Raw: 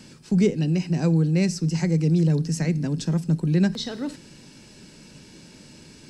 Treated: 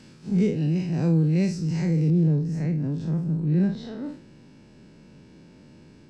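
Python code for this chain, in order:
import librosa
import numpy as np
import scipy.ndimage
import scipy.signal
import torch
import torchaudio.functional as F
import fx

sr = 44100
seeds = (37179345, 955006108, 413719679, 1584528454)

y = fx.spec_blur(x, sr, span_ms=98.0)
y = fx.lowpass(y, sr, hz=fx.steps((0.0, 3700.0), (2.1, 1100.0)), slope=6)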